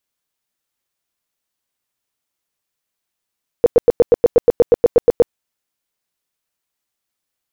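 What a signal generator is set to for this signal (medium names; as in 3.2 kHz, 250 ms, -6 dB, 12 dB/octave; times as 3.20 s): tone bursts 477 Hz, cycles 10, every 0.12 s, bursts 14, -4.5 dBFS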